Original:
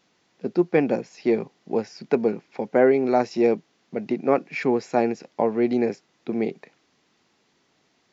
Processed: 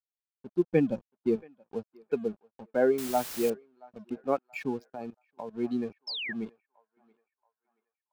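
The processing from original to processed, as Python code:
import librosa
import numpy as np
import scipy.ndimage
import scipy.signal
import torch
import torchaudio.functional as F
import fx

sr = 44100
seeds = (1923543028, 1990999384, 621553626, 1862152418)

y = fx.bin_expand(x, sr, power=2.0)
y = fx.env_lowpass(y, sr, base_hz=1900.0, full_db=-20.5)
y = np.sign(y) * np.maximum(np.abs(y) - 10.0 ** (-46.5 / 20.0), 0.0)
y = fx.low_shelf(y, sr, hz=230.0, db=10.0, at=(0.72, 1.36))
y = fx.echo_banded(y, sr, ms=678, feedback_pct=43, hz=1300.0, wet_db=-21.0)
y = fx.level_steps(y, sr, step_db=17, at=(4.87, 5.53), fade=0.02)
y = fx.notch(y, sr, hz=2000.0, q=6.0)
y = fx.quant_dither(y, sr, seeds[0], bits=6, dither='triangular', at=(2.98, 3.5))
y = fx.spec_paint(y, sr, seeds[1], shape='fall', start_s=6.07, length_s=0.26, low_hz=1600.0, high_hz=5500.0, level_db=-31.0)
y = y * 10.0 ** (-4.0 / 20.0)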